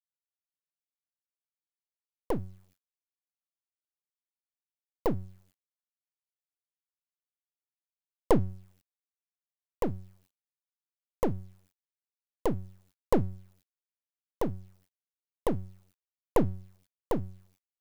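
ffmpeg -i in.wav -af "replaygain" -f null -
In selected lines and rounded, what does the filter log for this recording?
track_gain = +17.1 dB
track_peak = 0.287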